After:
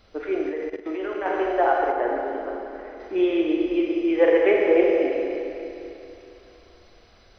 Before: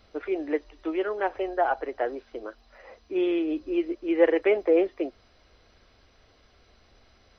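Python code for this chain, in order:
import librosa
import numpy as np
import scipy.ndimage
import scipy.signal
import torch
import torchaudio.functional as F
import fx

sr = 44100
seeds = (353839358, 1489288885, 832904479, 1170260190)

y = fx.rev_schroeder(x, sr, rt60_s=3.0, comb_ms=32, drr_db=-1.5)
y = fx.level_steps(y, sr, step_db=15, at=(0.49, 1.26))
y = fx.high_shelf(y, sr, hz=2800.0, db=-9.5, at=(1.92, 3.0))
y = y * 10.0 ** (1.5 / 20.0)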